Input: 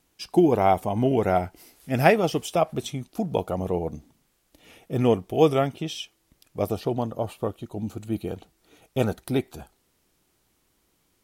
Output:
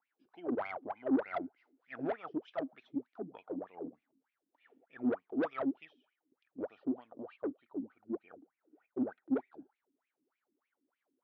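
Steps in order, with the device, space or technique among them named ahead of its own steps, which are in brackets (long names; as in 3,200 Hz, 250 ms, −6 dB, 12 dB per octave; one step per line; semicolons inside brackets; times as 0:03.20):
0:07.82–0:09.32: low-pass filter 2,100 Hz 12 dB per octave
wah-wah guitar rig (LFO wah 3.3 Hz 260–2,500 Hz, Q 13; tube saturation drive 30 dB, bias 0.25; loudspeaker in its box 110–4,200 Hz, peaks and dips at 260 Hz +7 dB, 1,500 Hz +4 dB, 2,500 Hz −4 dB)
level +1 dB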